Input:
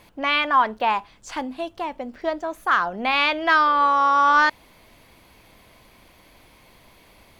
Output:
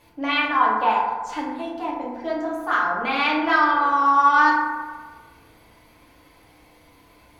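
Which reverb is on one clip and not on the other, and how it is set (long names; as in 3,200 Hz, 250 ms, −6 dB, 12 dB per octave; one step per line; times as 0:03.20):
feedback delay network reverb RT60 1.4 s, low-frequency decay 0.9×, high-frequency decay 0.35×, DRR −6 dB
level −7.5 dB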